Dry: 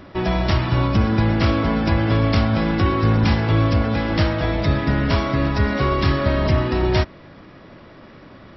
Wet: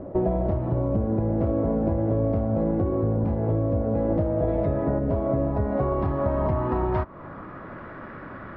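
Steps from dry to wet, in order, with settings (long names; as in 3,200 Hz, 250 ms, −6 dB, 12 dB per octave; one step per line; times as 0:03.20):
0:04.47–0:04.98: parametric band 4,000 Hz → 940 Hz +8.5 dB 2.6 octaves
downward compressor 6 to 1, threshold −25 dBFS, peak gain reduction 12 dB
low-pass filter sweep 570 Hz → 1,500 Hz, 0:05.09–0:07.86
level +2.5 dB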